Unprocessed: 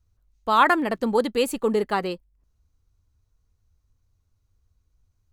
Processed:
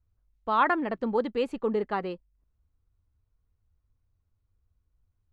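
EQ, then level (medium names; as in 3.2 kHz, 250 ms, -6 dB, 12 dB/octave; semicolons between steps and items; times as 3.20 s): Bessel low-pass 2.3 kHz, order 2; -5.0 dB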